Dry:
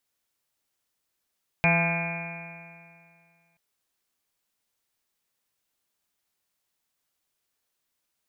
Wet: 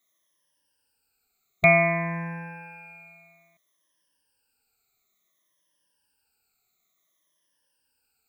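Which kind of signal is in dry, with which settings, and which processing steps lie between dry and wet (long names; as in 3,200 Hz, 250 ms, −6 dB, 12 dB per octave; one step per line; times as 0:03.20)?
stiff-string partials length 1.93 s, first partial 167 Hz, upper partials −18/−14/−3/−7/−13/−18/−19/−9.5/−16/−14/−5/1/−18 dB, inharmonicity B 0.0014, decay 2.26 s, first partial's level −22 dB
rippled gain that drifts along the octave scale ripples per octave 1.2, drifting −0.57 Hz, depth 22 dB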